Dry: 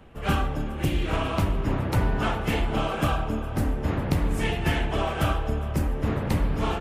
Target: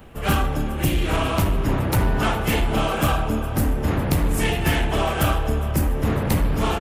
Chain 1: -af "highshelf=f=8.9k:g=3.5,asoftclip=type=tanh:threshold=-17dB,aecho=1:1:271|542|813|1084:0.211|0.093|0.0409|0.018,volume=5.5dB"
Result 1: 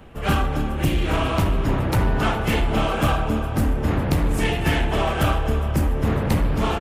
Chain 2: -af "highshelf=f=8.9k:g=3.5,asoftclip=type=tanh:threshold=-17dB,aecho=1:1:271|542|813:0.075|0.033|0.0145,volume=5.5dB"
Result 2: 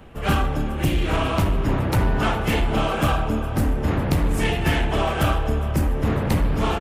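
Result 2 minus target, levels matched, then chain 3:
8000 Hz band -5.0 dB
-af "highshelf=f=8.9k:g=14.5,asoftclip=type=tanh:threshold=-17dB,aecho=1:1:271|542|813:0.075|0.033|0.0145,volume=5.5dB"

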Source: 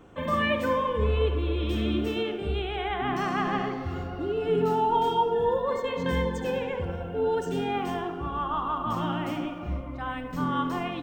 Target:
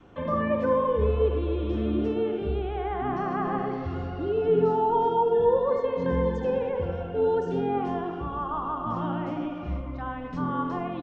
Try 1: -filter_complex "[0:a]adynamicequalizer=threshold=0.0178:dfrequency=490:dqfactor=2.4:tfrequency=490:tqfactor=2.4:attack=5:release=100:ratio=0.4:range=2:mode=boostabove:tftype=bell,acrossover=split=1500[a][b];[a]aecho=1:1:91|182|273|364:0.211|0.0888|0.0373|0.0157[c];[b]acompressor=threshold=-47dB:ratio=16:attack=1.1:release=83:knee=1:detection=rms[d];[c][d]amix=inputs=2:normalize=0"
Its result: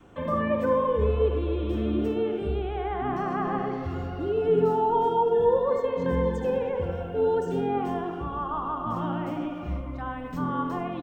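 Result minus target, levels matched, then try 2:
8000 Hz band +7.0 dB
-filter_complex "[0:a]adynamicequalizer=threshold=0.0178:dfrequency=490:dqfactor=2.4:tfrequency=490:tqfactor=2.4:attack=5:release=100:ratio=0.4:range=2:mode=boostabove:tftype=bell,acrossover=split=1500[a][b];[a]aecho=1:1:91|182|273|364:0.211|0.0888|0.0373|0.0157[c];[b]acompressor=threshold=-47dB:ratio=16:attack=1.1:release=83:knee=1:detection=rms,lowpass=f=5.8k:w=0.5412,lowpass=f=5.8k:w=1.3066[d];[c][d]amix=inputs=2:normalize=0"

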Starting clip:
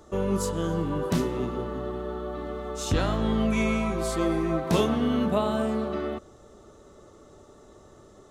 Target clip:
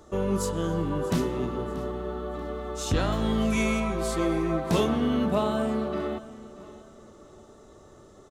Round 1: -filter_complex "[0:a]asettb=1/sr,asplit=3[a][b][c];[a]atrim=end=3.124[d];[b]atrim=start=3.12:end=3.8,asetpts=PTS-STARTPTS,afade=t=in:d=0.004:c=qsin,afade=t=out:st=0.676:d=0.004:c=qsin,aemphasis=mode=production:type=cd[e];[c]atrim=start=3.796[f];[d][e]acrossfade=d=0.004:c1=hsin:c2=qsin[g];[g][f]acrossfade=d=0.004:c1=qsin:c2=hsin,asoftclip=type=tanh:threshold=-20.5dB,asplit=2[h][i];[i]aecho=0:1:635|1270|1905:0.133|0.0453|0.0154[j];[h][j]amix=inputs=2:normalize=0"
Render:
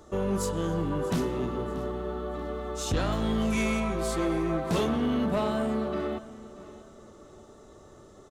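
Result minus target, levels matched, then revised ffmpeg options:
soft clip: distortion +14 dB
-filter_complex "[0:a]asettb=1/sr,asplit=3[a][b][c];[a]atrim=end=3.124[d];[b]atrim=start=3.12:end=3.8,asetpts=PTS-STARTPTS,afade=t=in:d=0.004:c=qsin,afade=t=out:st=0.676:d=0.004:c=qsin,aemphasis=mode=production:type=cd[e];[c]atrim=start=3.796[f];[d][e]acrossfade=d=0.004:c1=hsin:c2=qsin[g];[g][f]acrossfade=d=0.004:c1=qsin:c2=hsin,asoftclip=type=tanh:threshold=-11dB,asplit=2[h][i];[i]aecho=0:1:635|1270|1905:0.133|0.0453|0.0154[j];[h][j]amix=inputs=2:normalize=0"

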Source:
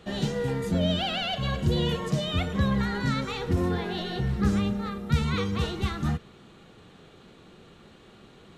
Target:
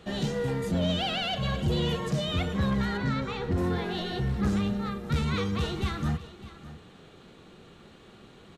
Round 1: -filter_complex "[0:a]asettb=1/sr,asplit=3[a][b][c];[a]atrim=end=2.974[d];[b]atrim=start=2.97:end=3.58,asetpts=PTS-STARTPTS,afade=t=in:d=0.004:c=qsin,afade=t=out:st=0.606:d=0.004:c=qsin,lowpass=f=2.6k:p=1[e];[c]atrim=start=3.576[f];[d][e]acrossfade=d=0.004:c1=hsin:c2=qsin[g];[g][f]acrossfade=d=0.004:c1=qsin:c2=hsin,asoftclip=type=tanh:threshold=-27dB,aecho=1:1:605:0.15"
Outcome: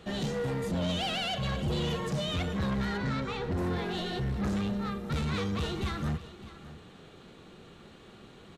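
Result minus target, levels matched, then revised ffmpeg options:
soft clip: distortion +7 dB
-filter_complex "[0:a]asettb=1/sr,asplit=3[a][b][c];[a]atrim=end=2.974[d];[b]atrim=start=2.97:end=3.58,asetpts=PTS-STARTPTS,afade=t=in:d=0.004:c=qsin,afade=t=out:st=0.606:d=0.004:c=qsin,lowpass=f=2.6k:p=1[e];[c]atrim=start=3.576[f];[d][e]acrossfade=d=0.004:c1=hsin:c2=qsin[g];[g][f]acrossfade=d=0.004:c1=qsin:c2=hsin,asoftclip=type=tanh:threshold=-19.5dB,aecho=1:1:605:0.15"

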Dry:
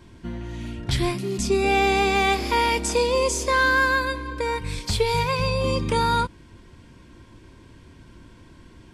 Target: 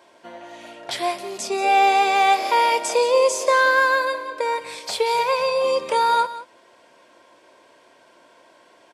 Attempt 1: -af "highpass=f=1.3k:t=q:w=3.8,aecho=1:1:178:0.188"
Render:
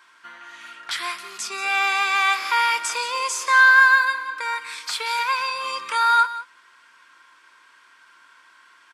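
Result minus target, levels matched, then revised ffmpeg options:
500 Hz band -19.5 dB
-af "highpass=f=620:t=q:w=3.8,aecho=1:1:178:0.188"

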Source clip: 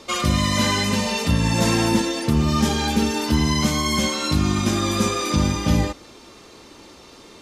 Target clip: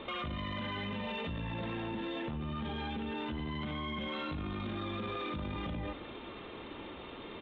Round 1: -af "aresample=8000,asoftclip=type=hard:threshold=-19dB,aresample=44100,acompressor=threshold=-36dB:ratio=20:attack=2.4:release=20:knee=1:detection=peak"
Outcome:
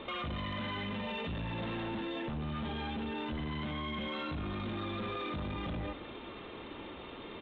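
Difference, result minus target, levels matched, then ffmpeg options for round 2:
hard clip: distortion +14 dB
-af "aresample=8000,asoftclip=type=hard:threshold=-11.5dB,aresample=44100,acompressor=threshold=-36dB:ratio=20:attack=2.4:release=20:knee=1:detection=peak"

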